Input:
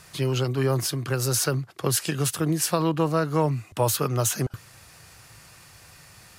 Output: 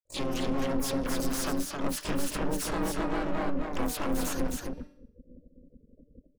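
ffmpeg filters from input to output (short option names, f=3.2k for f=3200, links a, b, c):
-filter_complex "[0:a]highpass=92,afftfilt=real='re*gte(hypot(re,im),0.0178)':imag='im*gte(hypot(re,im),0.0178)':win_size=1024:overlap=0.75,bandreject=f=151.6:t=h:w=4,bandreject=f=303.2:t=h:w=4,bandreject=f=454.8:t=h:w=4,bandreject=f=606.4:t=h:w=4,bandreject=f=758:t=h:w=4,bandreject=f=909.6:t=h:w=4,bandreject=f=1.0612k:t=h:w=4,bandreject=f=1.2128k:t=h:w=4,bandreject=f=1.3644k:t=h:w=4,bandreject=f=1.516k:t=h:w=4,bandreject=f=1.6676k:t=h:w=4,bandreject=f=1.8192k:t=h:w=4,bandreject=f=1.9708k:t=h:w=4,bandreject=f=2.1224k:t=h:w=4,bandreject=f=2.274k:t=h:w=4,bandreject=f=2.4256k:t=h:w=4,bandreject=f=2.5772k:t=h:w=4,bandreject=f=2.7288k:t=h:w=4,bandreject=f=2.8804k:t=h:w=4,bandreject=f=3.032k:t=h:w=4,bandreject=f=3.1836k:t=h:w=4,bandreject=f=3.3352k:t=h:w=4,bandreject=f=3.4868k:t=h:w=4,bandreject=f=3.6384k:t=h:w=4,bandreject=f=3.79k:t=h:w=4,bandreject=f=3.9416k:t=h:w=4,bandreject=f=4.0932k:t=h:w=4,bandreject=f=4.2448k:t=h:w=4,bandreject=f=4.3964k:t=h:w=4,bandreject=f=4.548k:t=h:w=4,bandreject=f=4.6996k:t=h:w=4,bandreject=f=4.8512k:t=h:w=4,bandreject=f=5.0028k:t=h:w=4,bandreject=f=5.1544k:t=h:w=4,bandreject=f=5.306k:t=h:w=4,bandreject=f=5.4576k:t=h:w=4,bandreject=f=5.6092k:t=h:w=4,bandreject=f=5.7608k:t=h:w=4,bandreject=f=5.9124k:t=h:w=4,asubboost=boost=3:cutoff=150,acompressor=threshold=-24dB:ratio=16,volume=29dB,asoftclip=hard,volume=-29dB,aeval=exprs='val(0)*sin(2*PI*140*n/s)':c=same,asplit=4[a][b][c][d];[b]asetrate=29433,aresample=44100,atempo=1.49831,volume=-9dB[e];[c]asetrate=58866,aresample=44100,atempo=0.749154,volume=-13dB[f];[d]asetrate=88200,aresample=44100,atempo=0.5,volume=-7dB[g];[a][e][f][g]amix=inputs=4:normalize=0,aecho=1:1:265:0.631,adynamicequalizer=threshold=0.00316:dfrequency=2400:dqfactor=0.7:tfrequency=2400:tqfactor=0.7:attack=5:release=100:ratio=0.375:range=2:mode=cutabove:tftype=highshelf,volume=3dB"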